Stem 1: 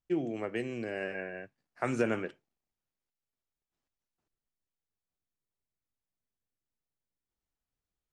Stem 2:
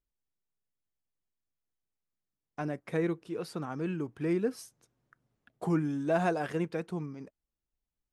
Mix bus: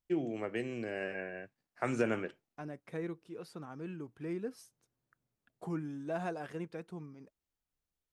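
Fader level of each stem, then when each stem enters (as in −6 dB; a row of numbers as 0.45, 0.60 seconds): −2.0, −9.0 decibels; 0.00, 0.00 seconds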